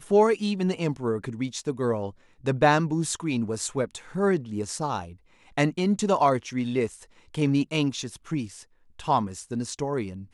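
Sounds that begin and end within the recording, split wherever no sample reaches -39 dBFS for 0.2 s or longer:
2.44–5.13 s
5.57–7.04 s
7.34–8.62 s

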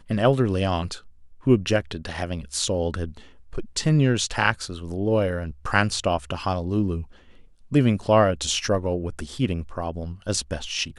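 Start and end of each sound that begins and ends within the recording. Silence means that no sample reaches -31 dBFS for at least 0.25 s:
1.46–3.17 s
3.53–7.03 s

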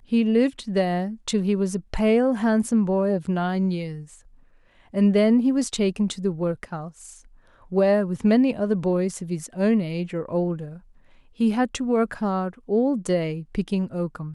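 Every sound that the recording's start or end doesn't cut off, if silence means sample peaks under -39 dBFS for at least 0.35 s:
4.94–7.18 s
7.71–10.78 s

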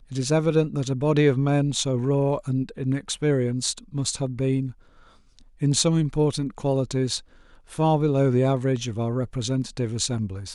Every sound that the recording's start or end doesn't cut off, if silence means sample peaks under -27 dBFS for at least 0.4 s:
5.62–7.17 s

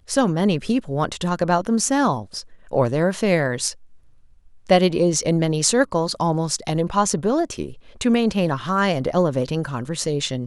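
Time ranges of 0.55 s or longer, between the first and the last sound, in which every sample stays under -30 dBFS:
3.73–4.69 s

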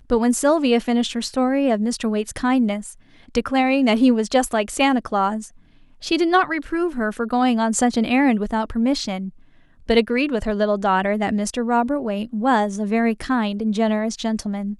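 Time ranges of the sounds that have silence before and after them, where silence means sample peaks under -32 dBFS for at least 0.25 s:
3.35–5.46 s
6.02–9.29 s

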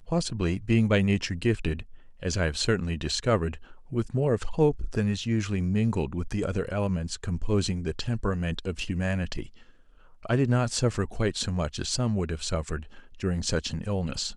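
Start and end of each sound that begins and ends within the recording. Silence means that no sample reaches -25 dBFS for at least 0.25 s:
2.25–3.53 s
3.96–9.42 s
10.25–12.76 s

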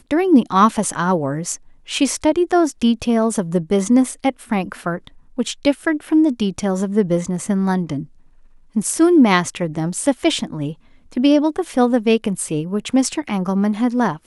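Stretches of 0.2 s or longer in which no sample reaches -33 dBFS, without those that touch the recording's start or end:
1.56–1.88 s
5.08–5.38 s
8.05–8.76 s
10.73–11.12 s

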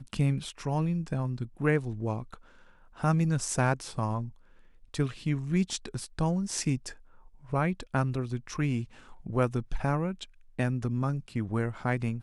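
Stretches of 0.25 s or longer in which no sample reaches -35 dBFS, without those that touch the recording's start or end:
2.34–3.00 s
4.29–4.94 s
6.92–7.52 s
8.84–9.26 s
10.24–10.59 s

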